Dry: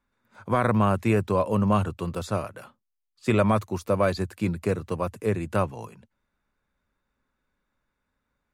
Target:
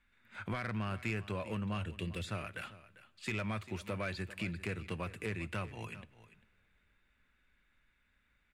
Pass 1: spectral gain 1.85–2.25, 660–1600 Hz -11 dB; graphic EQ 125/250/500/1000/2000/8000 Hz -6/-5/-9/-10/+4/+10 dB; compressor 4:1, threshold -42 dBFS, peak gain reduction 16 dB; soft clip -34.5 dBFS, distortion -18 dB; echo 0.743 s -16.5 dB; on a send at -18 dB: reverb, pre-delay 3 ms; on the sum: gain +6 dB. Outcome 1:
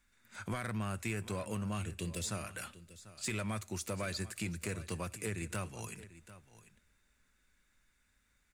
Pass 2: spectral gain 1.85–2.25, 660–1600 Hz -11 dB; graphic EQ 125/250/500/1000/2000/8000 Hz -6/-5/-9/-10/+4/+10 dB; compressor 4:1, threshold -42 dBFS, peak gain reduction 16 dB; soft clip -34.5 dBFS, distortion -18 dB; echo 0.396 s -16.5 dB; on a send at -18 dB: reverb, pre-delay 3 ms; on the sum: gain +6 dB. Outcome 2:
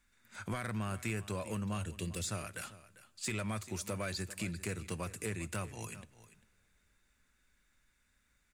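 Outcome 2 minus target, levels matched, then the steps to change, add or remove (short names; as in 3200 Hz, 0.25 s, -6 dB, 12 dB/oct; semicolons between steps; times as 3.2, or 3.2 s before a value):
8000 Hz band +13.5 dB
add after compressor: resonant high shelf 4300 Hz -13 dB, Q 1.5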